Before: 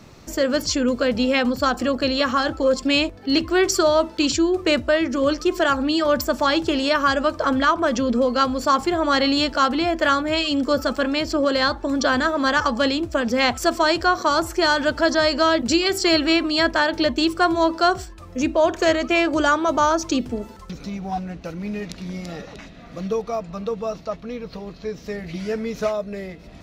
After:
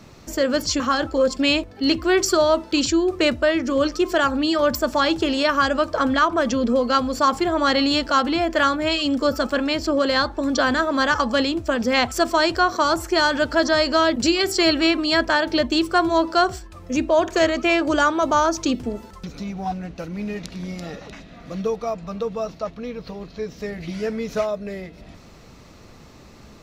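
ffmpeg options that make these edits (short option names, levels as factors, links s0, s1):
-filter_complex "[0:a]asplit=2[s0][s1];[s0]atrim=end=0.802[s2];[s1]atrim=start=2.258[s3];[s2][s3]acrossfade=d=0.004:c1=hsin:c2=hsin"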